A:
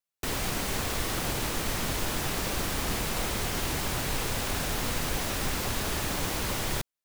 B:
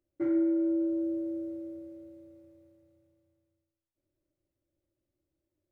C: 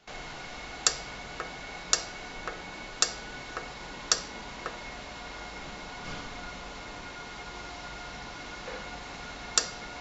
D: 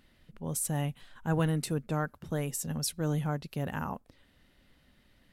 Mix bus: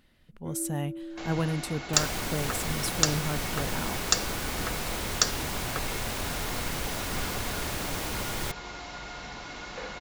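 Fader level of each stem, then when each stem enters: −2.5, −11.0, +1.0, −0.5 decibels; 1.70, 0.25, 1.10, 0.00 seconds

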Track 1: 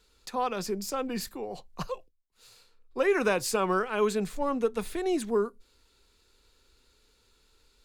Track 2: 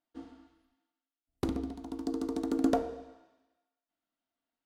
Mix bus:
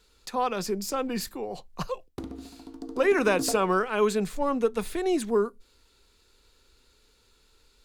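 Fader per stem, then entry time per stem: +2.5, −5.0 decibels; 0.00, 0.75 seconds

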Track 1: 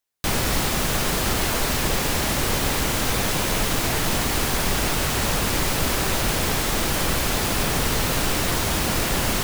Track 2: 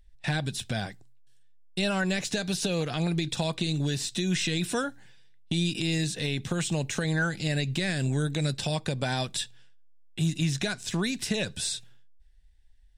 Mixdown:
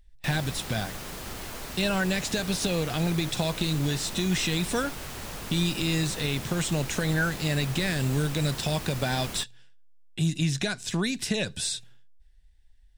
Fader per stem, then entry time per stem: −15.5, +1.0 decibels; 0.00, 0.00 seconds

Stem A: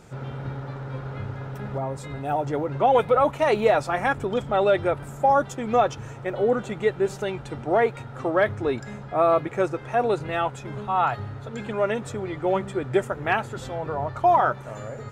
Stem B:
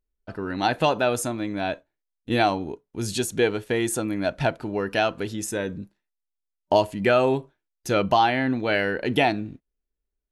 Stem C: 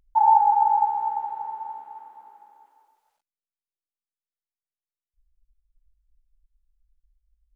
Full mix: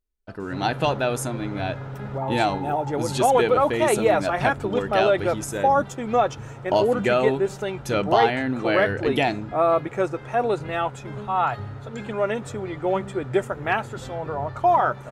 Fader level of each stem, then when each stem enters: 0.0, −1.5, −16.0 decibels; 0.40, 0.00, 2.05 seconds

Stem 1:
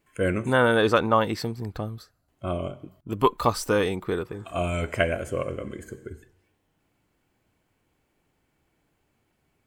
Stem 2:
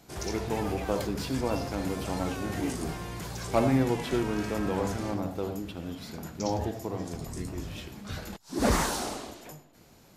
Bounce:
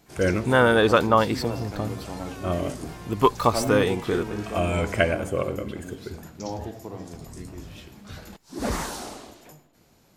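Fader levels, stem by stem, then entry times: +2.0, −3.0 decibels; 0.00, 0.00 seconds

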